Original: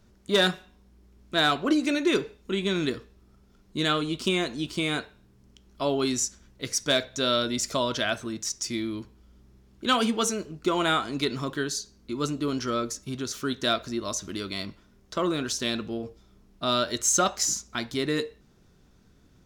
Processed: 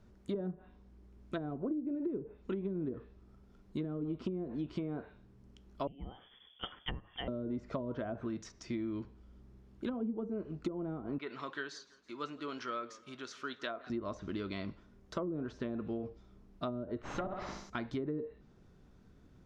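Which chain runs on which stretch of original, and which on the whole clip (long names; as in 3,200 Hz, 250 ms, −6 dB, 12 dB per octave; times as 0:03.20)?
0:05.87–0:07.28: de-essing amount 45% + voice inversion scrambler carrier 3,400 Hz
0:11.18–0:13.90: resonant band-pass 2,100 Hz, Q 0.63 + feedback echo with a swinging delay time 164 ms, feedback 52%, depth 115 cents, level −22 dB
0:16.99–0:17.70: tube saturation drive 22 dB, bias 0.7 + high shelf with overshoot 5,300 Hz −10 dB, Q 1.5 + flutter between parallel walls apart 10.5 metres, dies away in 0.65 s
whole clip: treble cut that deepens with the level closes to 360 Hz, closed at −21.5 dBFS; high-shelf EQ 2,800 Hz −11.5 dB; downward compressor 4 to 1, threshold −33 dBFS; level −1.5 dB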